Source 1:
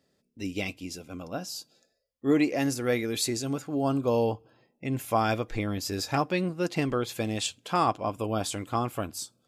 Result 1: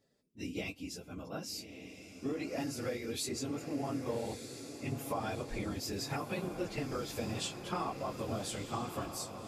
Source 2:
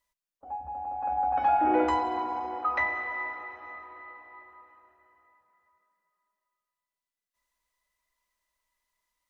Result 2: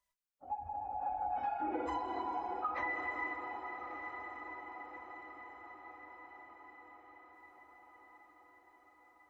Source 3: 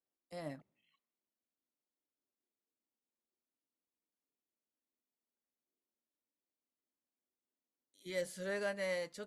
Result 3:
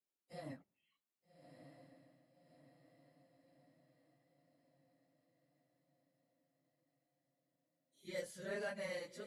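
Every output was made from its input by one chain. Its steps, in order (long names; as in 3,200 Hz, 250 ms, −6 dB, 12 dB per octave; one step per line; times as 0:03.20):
random phases in long frames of 50 ms
downward compressor, threshold −29 dBFS
on a send: feedback delay with all-pass diffusion 1,248 ms, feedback 56%, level −8.5 dB
on the sum: level −5 dB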